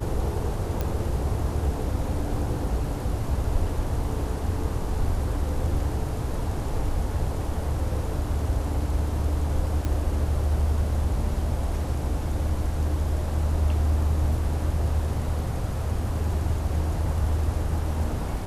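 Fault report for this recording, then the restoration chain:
0:00.81: click −14 dBFS
0:09.85: click −16 dBFS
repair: click removal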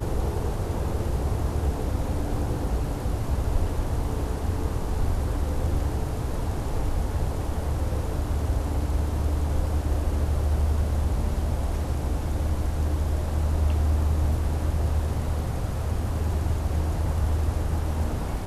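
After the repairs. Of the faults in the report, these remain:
0:09.85: click

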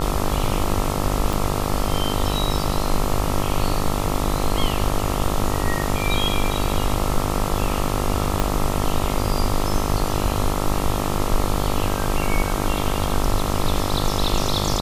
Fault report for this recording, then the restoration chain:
mains buzz 50 Hz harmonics 27 −25 dBFS
0:01.33: click
0:08.40: click −6 dBFS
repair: click removal
hum removal 50 Hz, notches 27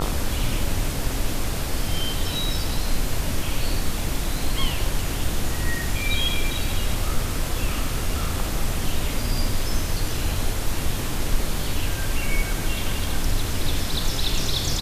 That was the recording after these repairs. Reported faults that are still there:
0:01.33: click
0:08.40: click

